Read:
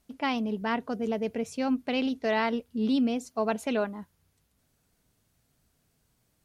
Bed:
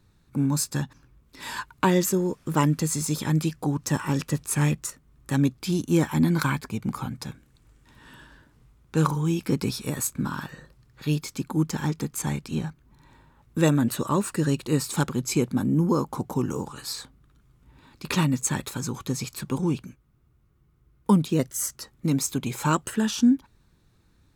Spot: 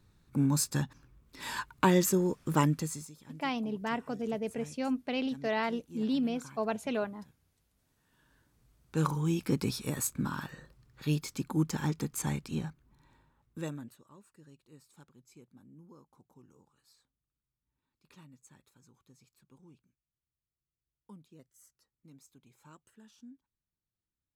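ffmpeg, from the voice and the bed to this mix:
-filter_complex "[0:a]adelay=3200,volume=-4.5dB[a];[1:a]volume=18dB,afade=t=out:st=2.55:d=0.57:silence=0.0707946,afade=t=in:st=8.1:d=1.23:silence=0.0841395,afade=t=out:st=12.33:d=1.66:silence=0.0398107[b];[a][b]amix=inputs=2:normalize=0"

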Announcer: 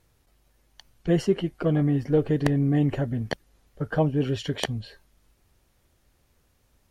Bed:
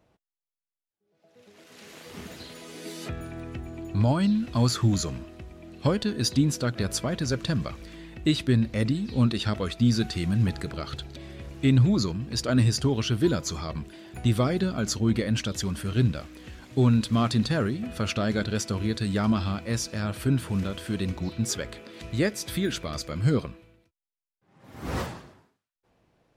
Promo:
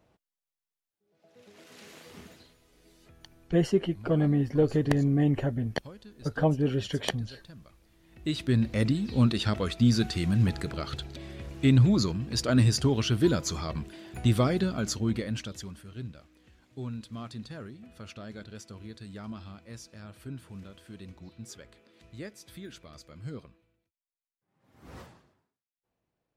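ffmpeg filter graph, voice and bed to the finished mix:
-filter_complex "[0:a]adelay=2450,volume=-2dB[a];[1:a]volume=21.5dB,afade=t=out:st=1.66:d=0.91:silence=0.0794328,afade=t=in:st=8.01:d=0.7:silence=0.0794328,afade=t=out:st=14.46:d=1.39:silence=0.158489[b];[a][b]amix=inputs=2:normalize=0"

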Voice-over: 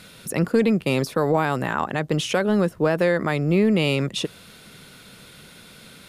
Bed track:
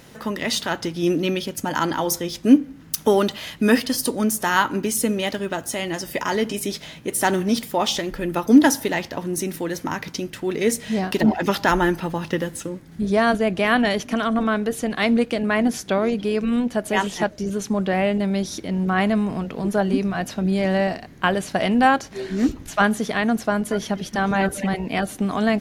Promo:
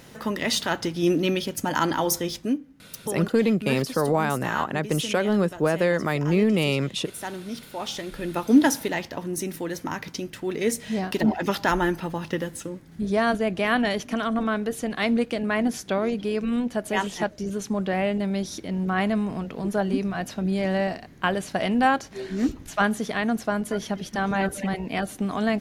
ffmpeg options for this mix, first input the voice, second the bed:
-filter_complex "[0:a]adelay=2800,volume=-2dB[a];[1:a]volume=9dB,afade=t=out:st=2.31:d=0.23:silence=0.223872,afade=t=in:st=7.69:d=0.67:silence=0.316228[b];[a][b]amix=inputs=2:normalize=0"

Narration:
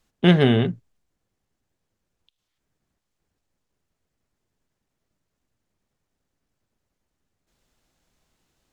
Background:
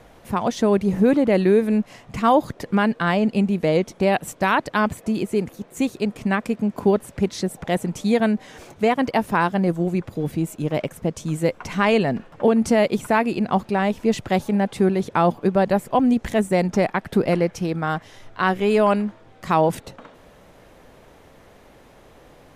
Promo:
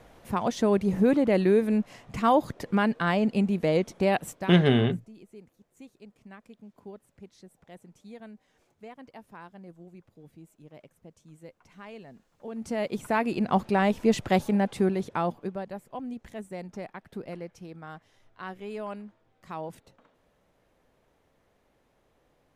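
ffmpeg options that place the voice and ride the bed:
-filter_complex "[0:a]adelay=4250,volume=-4dB[a];[1:a]volume=19dB,afade=t=out:st=4.23:d=0.31:silence=0.0841395,afade=t=in:st=12.43:d=1.27:silence=0.0630957,afade=t=out:st=14.33:d=1.33:silence=0.149624[b];[a][b]amix=inputs=2:normalize=0"

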